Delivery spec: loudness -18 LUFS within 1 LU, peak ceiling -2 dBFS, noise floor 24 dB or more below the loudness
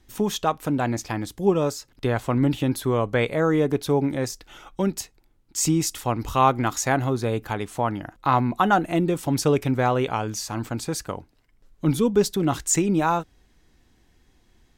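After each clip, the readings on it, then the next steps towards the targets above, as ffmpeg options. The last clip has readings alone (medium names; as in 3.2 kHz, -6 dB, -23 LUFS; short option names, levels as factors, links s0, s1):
loudness -23.5 LUFS; peak level -5.0 dBFS; loudness target -18.0 LUFS
-> -af "volume=1.88,alimiter=limit=0.794:level=0:latency=1"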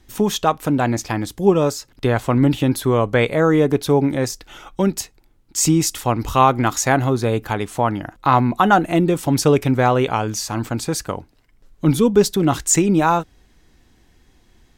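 loudness -18.5 LUFS; peak level -2.0 dBFS; noise floor -56 dBFS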